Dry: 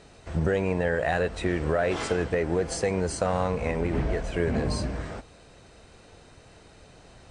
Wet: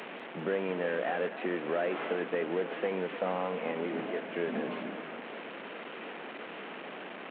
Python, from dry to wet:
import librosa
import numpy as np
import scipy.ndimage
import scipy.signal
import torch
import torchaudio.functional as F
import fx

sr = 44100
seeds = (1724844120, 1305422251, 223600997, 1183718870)

p1 = fx.delta_mod(x, sr, bps=16000, step_db=-29.5)
p2 = scipy.signal.sosfilt(scipy.signal.butter(6, 200.0, 'highpass', fs=sr, output='sos'), p1)
p3 = p2 + fx.echo_split(p2, sr, split_hz=1000.0, low_ms=299, high_ms=197, feedback_pct=52, wet_db=-13, dry=0)
y = p3 * librosa.db_to_amplitude(-5.5)